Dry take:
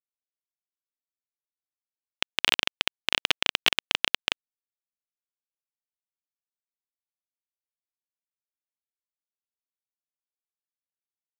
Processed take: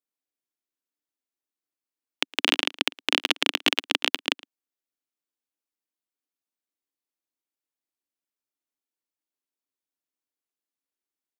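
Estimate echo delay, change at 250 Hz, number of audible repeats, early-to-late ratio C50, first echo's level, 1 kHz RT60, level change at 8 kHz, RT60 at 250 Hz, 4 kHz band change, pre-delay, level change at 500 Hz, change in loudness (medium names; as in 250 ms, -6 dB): 112 ms, +8.5 dB, 1, no reverb, -23.5 dB, no reverb, +1.0 dB, no reverb, +1.0 dB, no reverb, +4.5 dB, +1.0 dB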